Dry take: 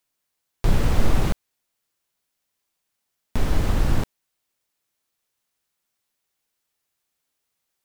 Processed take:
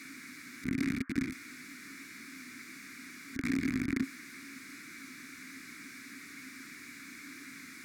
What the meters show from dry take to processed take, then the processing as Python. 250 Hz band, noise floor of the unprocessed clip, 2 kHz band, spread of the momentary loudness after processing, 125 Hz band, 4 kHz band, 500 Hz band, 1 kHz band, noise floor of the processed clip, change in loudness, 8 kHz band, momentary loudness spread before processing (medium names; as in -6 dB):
-2.0 dB, -79 dBFS, -0.5 dB, 13 LU, -18.0 dB, -8.0 dB, -16.0 dB, -16.5 dB, -50 dBFS, -14.0 dB, -4.5 dB, 11 LU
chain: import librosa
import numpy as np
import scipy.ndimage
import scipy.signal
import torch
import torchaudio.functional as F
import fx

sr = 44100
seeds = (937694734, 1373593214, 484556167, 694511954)

y = np.sign(x) * np.sqrt(np.mean(np.square(x)))
y = fx.highpass(y, sr, hz=81.0, slope=6)
y = fx.over_compress(y, sr, threshold_db=-30.0, ratio=-0.5)
y = fx.dmg_noise_band(y, sr, seeds[0], low_hz=900.0, high_hz=1700.0, level_db=-45.0)
y = fx.vowel_filter(y, sr, vowel='i')
y = fx.fixed_phaser(y, sr, hz=1300.0, stages=4)
y = y * 10.0 ** (11.5 / 20.0)